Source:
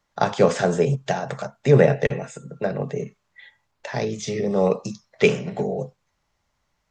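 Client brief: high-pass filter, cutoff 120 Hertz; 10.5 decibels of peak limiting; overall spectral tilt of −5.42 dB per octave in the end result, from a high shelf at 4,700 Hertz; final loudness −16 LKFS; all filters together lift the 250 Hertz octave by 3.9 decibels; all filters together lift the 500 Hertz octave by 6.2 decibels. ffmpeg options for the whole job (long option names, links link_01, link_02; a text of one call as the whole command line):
ffmpeg -i in.wav -af "highpass=120,equalizer=frequency=250:width_type=o:gain=5,equalizer=frequency=500:width_type=o:gain=6,highshelf=frequency=4700:gain=-7,volume=6dB,alimiter=limit=-2.5dB:level=0:latency=1" out.wav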